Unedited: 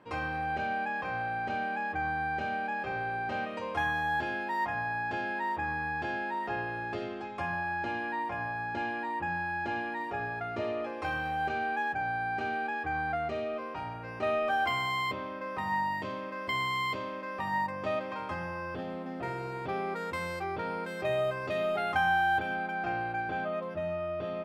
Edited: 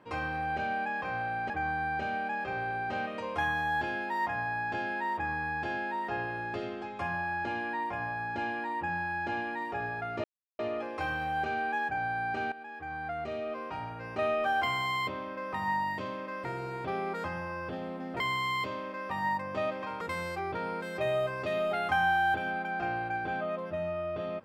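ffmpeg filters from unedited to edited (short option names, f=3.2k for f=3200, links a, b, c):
-filter_complex "[0:a]asplit=8[a][b][c][d][e][f][g][h];[a]atrim=end=1.502[i];[b]atrim=start=1.888:end=10.63,asetpts=PTS-STARTPTS,afade=t=out:st=8.738:d=0.004:c=hsin,apad=pad_dur=0.35[j];[c]atrim=start=10.63:end=12.56,asetpts=PTS-STARTPTS,afade=t=in:d=0.004:c=hsin,afade=t=out:st=1.926:d=0.004:c=hsin:silence=0.188365[k];[d]atrim=start=12.56:end=16.492,asetpts=PTS-STARTPTS,afade=t=in:d=1.11:silence=0.188365[l];[e]atrim=start=19.258:end=20.052[m];[f]atrim=start=18.298:end=19.262[n];[g]atrim=start=16.488:end=18.302[o];[h]atrim=start=20.048[p];[j][k][l]concat=n=3:v=0:a=1[q];[i][q]acrossfade=d=0.004:c1=hsin:c2=hsin[r];[r][m]acrossfade=d=0.004:c1=hsin:c2=hsin[s];[s][n]acrossfade=d=0.004:c1=hsin:c2=hsin[t];[t][o]acrossfade=d=0.004:c1=hsin:c2=hsin[u];[u][p]acrossfade=d=0.004:c1=hsin:c2=hsin"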